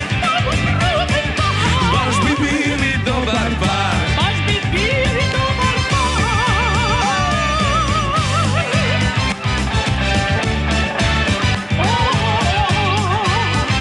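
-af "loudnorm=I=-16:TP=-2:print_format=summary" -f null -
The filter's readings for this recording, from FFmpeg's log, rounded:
Input Integrated:    -16.2 LUFS
Input True Peak:      -2.9 dBTP
Input LRA:             1.1 LU
Input Threshold:     -26.2 LUFS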